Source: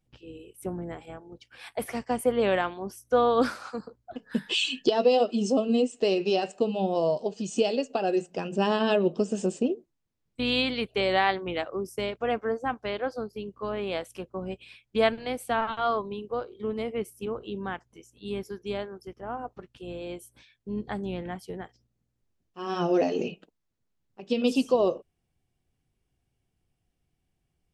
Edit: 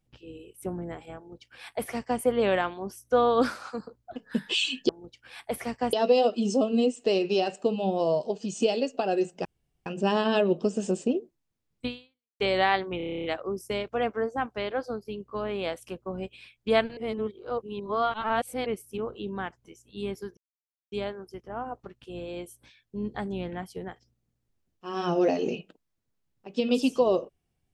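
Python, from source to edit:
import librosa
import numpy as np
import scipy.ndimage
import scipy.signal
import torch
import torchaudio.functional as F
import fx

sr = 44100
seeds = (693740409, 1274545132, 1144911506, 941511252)

y = fx.edit(x, sr, fx.duplicate(start_s=1.17, length_s=1.04, to_s=4.89),
    fx.insert_room_tone(at_s=8.41, length_s=0.41),
    fx.fade_out_span(start_s=10.41, length_s=0.54, curve='exp'),
    fx.stutter(start_s=11.52, slice_s=0.03, count=10),
    fx.reverse_span(start_s=15.25, length_s=1.69),
    fx.insert_silence(at_s=18.65, length_s=0.55), tone=tone)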